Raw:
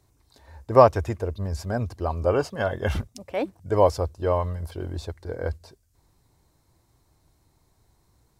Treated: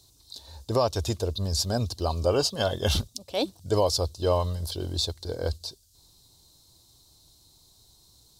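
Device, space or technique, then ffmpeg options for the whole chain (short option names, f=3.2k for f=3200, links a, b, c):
over-bright horn tweeter: -af "highshelf=f=2.8k:t=q:w=3:g=11.5,alimiter=limit=-12.5dB:level=0:latency=1:release=261"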